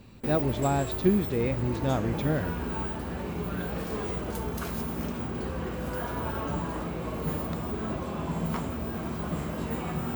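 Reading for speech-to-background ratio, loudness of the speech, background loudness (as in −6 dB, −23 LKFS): 4.5 dB, −28.5 LKFS, −33.0 LKFS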